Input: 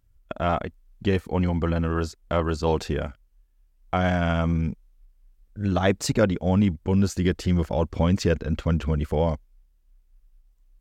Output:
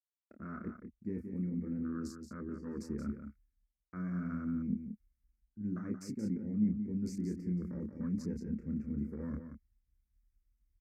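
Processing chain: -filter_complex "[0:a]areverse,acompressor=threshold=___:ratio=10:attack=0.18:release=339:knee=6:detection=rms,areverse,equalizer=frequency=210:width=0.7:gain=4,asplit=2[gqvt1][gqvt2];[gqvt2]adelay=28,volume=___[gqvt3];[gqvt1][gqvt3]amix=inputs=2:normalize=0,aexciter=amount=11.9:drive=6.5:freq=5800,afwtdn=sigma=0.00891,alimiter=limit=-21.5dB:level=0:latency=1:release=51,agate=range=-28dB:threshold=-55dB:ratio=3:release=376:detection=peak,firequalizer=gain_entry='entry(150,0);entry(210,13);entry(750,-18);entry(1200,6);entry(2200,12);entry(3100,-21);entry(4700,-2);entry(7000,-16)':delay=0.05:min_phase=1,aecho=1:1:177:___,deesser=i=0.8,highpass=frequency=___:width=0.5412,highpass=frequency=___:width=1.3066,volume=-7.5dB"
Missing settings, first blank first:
-33dB, -5dB, 0.398, 48, 48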